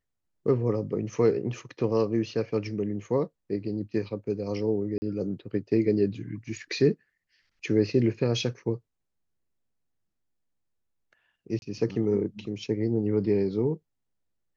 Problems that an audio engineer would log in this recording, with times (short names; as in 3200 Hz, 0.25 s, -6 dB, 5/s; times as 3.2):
4.98–5.02 gap 40 ms
11.59–11.62 gap 31 ms